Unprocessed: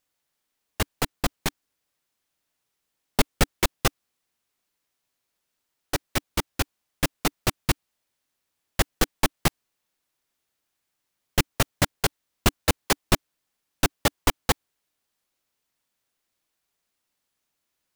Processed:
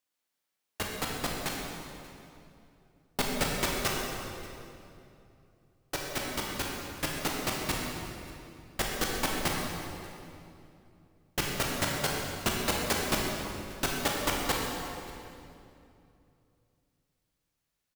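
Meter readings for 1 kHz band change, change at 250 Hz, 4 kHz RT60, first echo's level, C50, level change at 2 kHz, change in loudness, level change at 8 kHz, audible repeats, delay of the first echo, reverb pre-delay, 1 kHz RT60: −3.5 dB, −4.5 dB, 2.1 s, −21.5 dB, −0.5 dB, −3.5 dB, −5.5 dB, −4.0 dB, 1, 584 ms, 18 ms, 2.5 s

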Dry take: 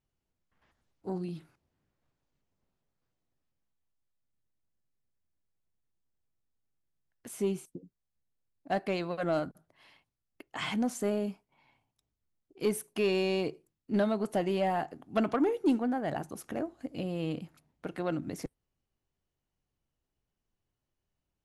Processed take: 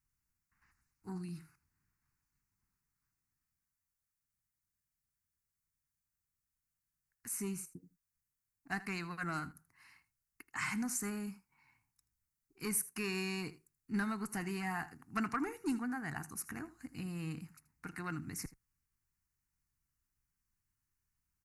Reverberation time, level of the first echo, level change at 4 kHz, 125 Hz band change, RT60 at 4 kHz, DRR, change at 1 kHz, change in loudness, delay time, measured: no reverb audible, −17.5 dB, −7.0 dB, −4.5 dB, no reverb audible, no reverb audible, −7.0 dB, −7.0 dB, 80 ms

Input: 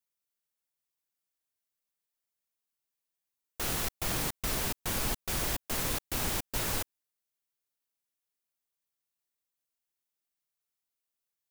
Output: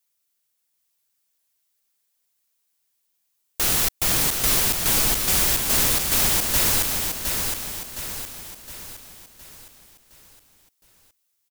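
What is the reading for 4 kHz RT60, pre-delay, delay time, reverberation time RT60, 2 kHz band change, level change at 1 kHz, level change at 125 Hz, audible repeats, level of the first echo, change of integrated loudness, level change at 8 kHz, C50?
no reverb audible, no reverb audible, 714 ms, no reverb audible, +10.5 dB, +8.5 dB, +7.5 dB, 5, −5.0 dB, +12.5 dB, +15.0 dB, no reverb audible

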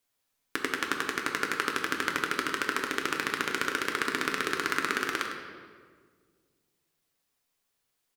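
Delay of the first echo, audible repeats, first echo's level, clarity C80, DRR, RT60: 103 ms, 1, −9.5 dB, 4.5 dB, 0.5 dB, 1.7 s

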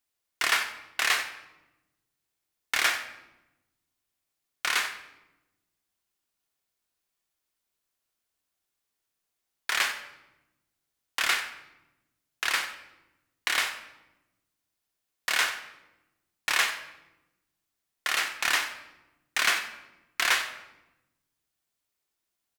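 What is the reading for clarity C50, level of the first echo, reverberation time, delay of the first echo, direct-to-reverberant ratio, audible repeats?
9.0 dB, −14.0 dB, 1.0 s, 93 ms, 6.0 dB, 1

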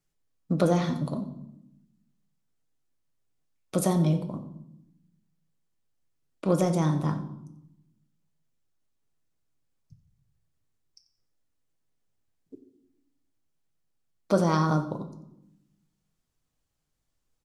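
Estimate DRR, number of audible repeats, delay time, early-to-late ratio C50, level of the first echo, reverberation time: 6.5 dB, 1, 90 ms, 11.5 dB, −16.5 dB, 0.85 s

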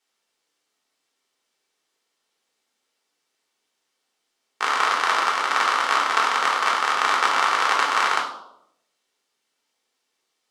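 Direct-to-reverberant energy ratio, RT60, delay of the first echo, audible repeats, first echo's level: −1.5 dB, 0.80 s, no echo audible, no echo audible, no echo audible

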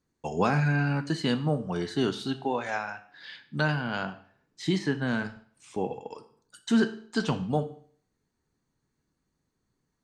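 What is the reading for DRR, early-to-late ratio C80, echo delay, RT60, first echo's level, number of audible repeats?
8.0 dB, 16.5 dB, no echo audible, 0.50 s, no echo audible, no echo audible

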